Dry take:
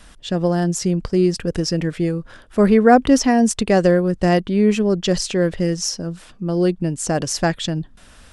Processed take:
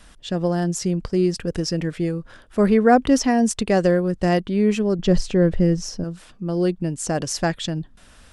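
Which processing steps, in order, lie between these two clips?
4.99–6.04 tilt -2.5 dB/oct; gain -3 dB

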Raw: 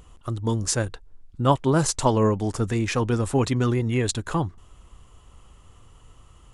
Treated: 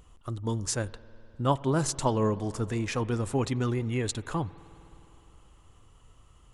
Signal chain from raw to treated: spring tank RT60 3.5 s, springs 51 ms, chirp 45 ms, DRR 18 dB; gain -6 dB

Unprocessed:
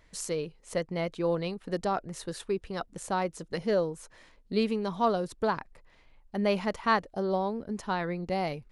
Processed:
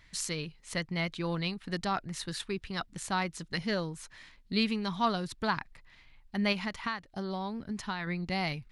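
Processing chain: graphic EQ 125/500/2000/4000 Hz +4/-11/+5/+6 dB; 6.52–8.07 compressor 12:1, threshold -31 dBFS, peak gain reduction 13.5 dB

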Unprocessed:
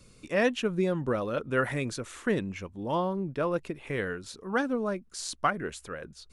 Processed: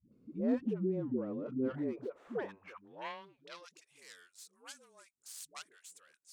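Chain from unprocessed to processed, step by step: tracing distortion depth 0.45 ms; dispersion highs, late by 0.12 s, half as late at 360 Hz; band-pass sweep 260 Hz -> 8000 Hz, 1.72–3.93

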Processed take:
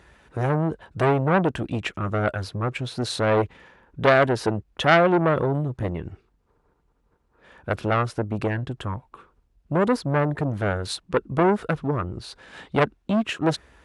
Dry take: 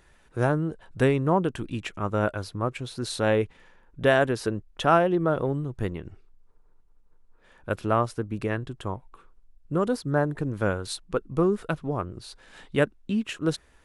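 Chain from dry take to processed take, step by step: HPF 44 Hz 24 dB/oct; high shelf 6300 Hz -11 dB; core saturation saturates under 1700 Hz; gain +7.5 dB

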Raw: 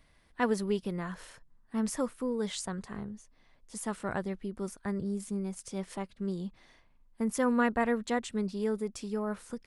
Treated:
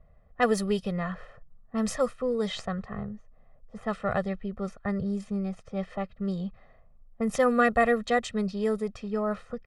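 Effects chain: tracing distortion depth 0.026 ms; low-pass opened by the level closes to 770 Hz, open at -25.5 dBFS; comb 1.6 ms, depth 97%; gain +3.5 dB

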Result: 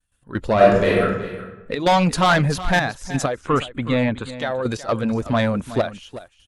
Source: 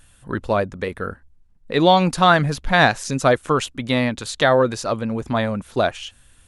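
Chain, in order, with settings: bin magnitudes rounded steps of 15 dB; expander -41 dBFS; step gate ".x.xxxxxxxx.." 129 bpm -12 dB; soft clip -14.5 dBFS, distortion -10 dB; 0.55–1.02 reverb throw, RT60 1 s, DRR -7 dB; 3.32–4.37 running mean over 8 samples; echo 0.371 s -14.5 dB; gain +3.5 dB

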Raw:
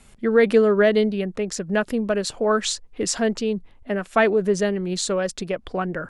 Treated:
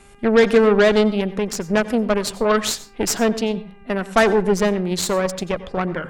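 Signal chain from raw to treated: 3.43–4.13 ripple EQ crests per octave 2, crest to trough 7 dB; buzz 400 Hz, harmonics 7, -55 dBFS -4 dB/oct; added harmonics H 8 -19 dB, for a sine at -5 dBFS; wow and flutter 20 cents; on a send: reverb RT60 0.40 s, pre-delay 84 ms, DRR 15.5 dB; on the sum: gain +2 dB

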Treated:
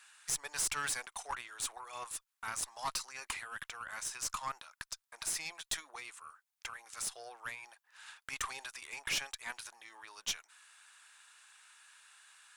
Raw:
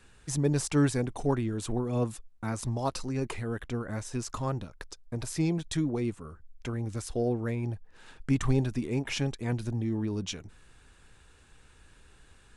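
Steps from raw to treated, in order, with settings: HPF 1000 Hz 24 dB/oct; high shelf 9400 Hz +8.5 dB; tube stage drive 31 dB, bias 0.45; gain +3.5 dB

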